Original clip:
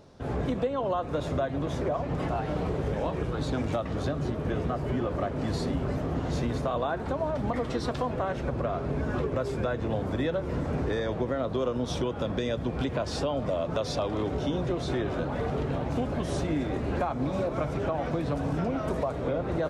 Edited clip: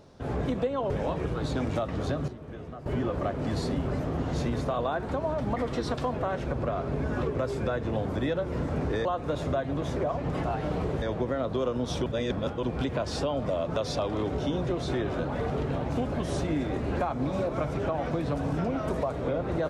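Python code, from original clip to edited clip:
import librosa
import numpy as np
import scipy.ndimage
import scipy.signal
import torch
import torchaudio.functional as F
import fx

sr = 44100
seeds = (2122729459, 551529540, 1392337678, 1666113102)

y = fx.edit(x, sr, fx.move(start_s=0.9, length_s=1.97, to_s=11.02),
    fx.clip_gain(start_s=4.25, length_s=0.58, db=-11.5),
    fx.reverse_span(start_s=12.06, length_s=0.57), tone=tone)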